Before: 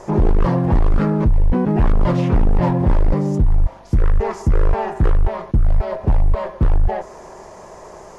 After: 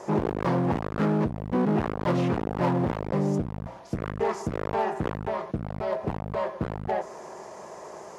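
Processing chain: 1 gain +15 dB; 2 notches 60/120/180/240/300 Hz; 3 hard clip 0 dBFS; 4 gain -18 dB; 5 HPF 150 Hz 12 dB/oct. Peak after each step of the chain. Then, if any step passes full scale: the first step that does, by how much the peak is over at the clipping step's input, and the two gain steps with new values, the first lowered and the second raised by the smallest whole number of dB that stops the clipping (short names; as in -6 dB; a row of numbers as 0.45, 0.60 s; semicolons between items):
+5.5, +8.0, 0.0, -18.0, -12.0 dBFS; step 1, 8.0 dB; step 1 +7 dB, step 4 -10 dB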